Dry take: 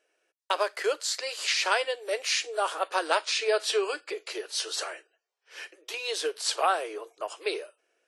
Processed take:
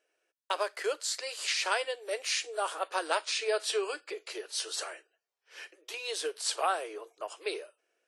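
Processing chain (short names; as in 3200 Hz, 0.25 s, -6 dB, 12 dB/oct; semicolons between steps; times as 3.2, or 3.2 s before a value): dynamic EQ 9000 Hz, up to +5 dB, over -50 dBFS, Q 2; gain -4.5 dB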